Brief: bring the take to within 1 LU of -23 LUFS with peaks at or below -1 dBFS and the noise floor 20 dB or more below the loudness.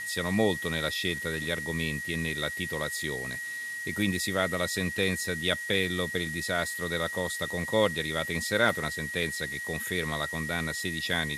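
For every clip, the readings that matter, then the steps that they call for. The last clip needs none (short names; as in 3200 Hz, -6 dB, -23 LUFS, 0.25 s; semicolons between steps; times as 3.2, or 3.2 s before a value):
steady tone 1900 Hz; tone level -34 dBFS; noise floor -37 dBFS; noise floor target -50 dBFS; loudness -29.5 LUFS; peak -10.5 dBFS; loudness target -23.0 LUFS
-> notch 1900 Hz, Q 30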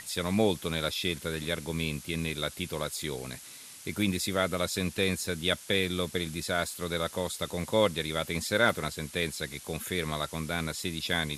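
steady tone none; noise floor -48 dBFS; noise floor target -51 dBFS
-> denoiser 6 dB, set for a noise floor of -48 dBFS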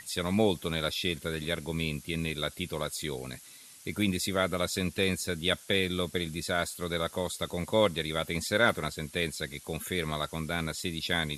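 noise floor -52 dBFS; loudness -31.0 LUFS; peak -11.0 dBFS; loudness target -23.0 LUFS
-> gain +8 dB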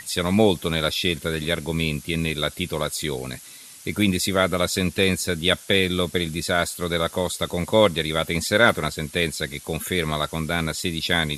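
loudness -23.0 LUFS; peak -3.0 dBFS; noise floor -44 dBFS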